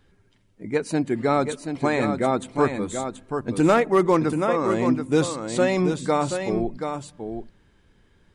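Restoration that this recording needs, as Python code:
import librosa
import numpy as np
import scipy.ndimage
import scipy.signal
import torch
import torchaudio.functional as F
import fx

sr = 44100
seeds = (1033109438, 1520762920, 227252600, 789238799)

y = fx.fix_declip(x, sr, threshold_db=-9.0)
y = fx.fix_echo_inverse(y, sr, delay_ms=730, level_db=-7.0)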